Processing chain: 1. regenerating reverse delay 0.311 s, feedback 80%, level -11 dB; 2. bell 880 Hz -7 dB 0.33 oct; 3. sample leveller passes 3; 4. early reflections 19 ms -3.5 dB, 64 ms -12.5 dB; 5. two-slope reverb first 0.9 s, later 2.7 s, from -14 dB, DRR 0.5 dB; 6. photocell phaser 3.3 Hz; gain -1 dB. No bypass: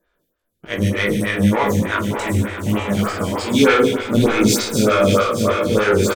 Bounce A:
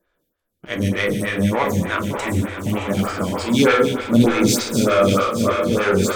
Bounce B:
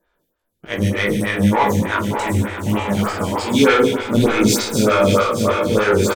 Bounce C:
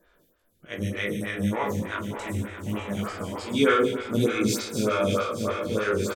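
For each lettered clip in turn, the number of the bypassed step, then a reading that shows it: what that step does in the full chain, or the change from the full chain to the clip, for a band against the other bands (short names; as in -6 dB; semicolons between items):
4, loudness change -1.5 LU; 2, 1 kHz band +2.0 dB; 3, crest factor change +2.0 dB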